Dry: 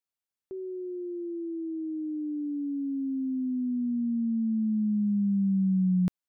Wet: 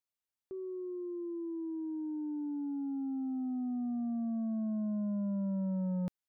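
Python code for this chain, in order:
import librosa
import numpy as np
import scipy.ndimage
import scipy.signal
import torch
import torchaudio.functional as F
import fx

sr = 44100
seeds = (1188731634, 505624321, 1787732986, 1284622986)

y = 10.0 ** (-28.0 / 20.0) * np.tanh(x / 10.0 ** (-28.0 / 20.0))
y = F.gain(torch.from_numpy(y), -3.5).numpy()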